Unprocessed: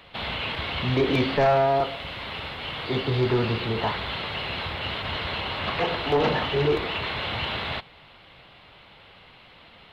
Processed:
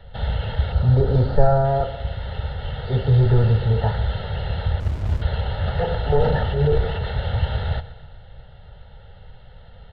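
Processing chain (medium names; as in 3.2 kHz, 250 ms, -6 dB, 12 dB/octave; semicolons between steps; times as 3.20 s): tilt EQ -4 dB/octave; comb 2.2 ms, depth 34%; 0.72–1.65 s: high-order bell 2.5 kHz -9 dB 1.2 oct; 6.22–7.10 s: transient shaper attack -7 dB, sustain +2 dB; static phaser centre 1.6 kHz, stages 8; on a send: feedback delay 126 ms, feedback 54%, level -16.5 dB; 4.80–5.22 s: on the sum: sliding maximum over 65 samples; trim +1 dB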